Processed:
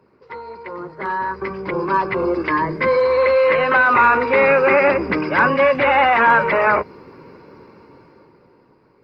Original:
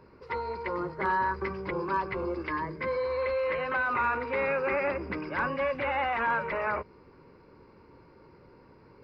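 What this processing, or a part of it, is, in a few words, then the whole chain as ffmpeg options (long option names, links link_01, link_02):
video call: -filter_complex "[0:a]asettb=1/sr,asplit=3[link_01][link_02][link_03];[link_01]atrim=end=1.134[link_04];[link_02]atrim=start=1.13:end=2.76,asetpts=PTS-STARTPTS,afade=type=in:duration=0.004:curve=qsin,afade=type=out:start_time=1.626:duration=0.004:curve=qsin,highshelf=frequency=2400:gain=-2.5[link_05];[link_03]atrim=start=2.756[link_06];[link_04][link_05]acrossfade=duration=0.004:curve1=hsin:curve2=qsin[link_07];[link_07][link_06]acrossfade=duration=0.004:curve1=qsin:curve2=hsin,highpass=120,dynaudnorm=framelen=320:gausssize=11:maxgain=16dB" -ar 48000 -c:a libopus -b:a 24k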